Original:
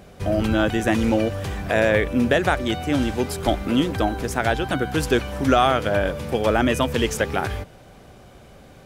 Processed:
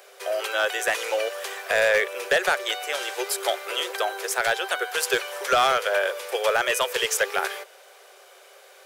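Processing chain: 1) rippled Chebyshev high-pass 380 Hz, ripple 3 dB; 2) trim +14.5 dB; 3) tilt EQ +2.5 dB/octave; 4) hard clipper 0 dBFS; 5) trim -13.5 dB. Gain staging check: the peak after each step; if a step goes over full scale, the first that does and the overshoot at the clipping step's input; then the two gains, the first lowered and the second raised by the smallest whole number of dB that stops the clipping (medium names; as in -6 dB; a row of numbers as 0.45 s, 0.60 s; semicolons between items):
-7.0 dBFS, +7.5 dBFS, +8.5 dBFS, 0.0 dBFS, -13.5 dBFS; step 2, 8.5 dB; step 2 +5.5 dB, step 5 -4.5 dB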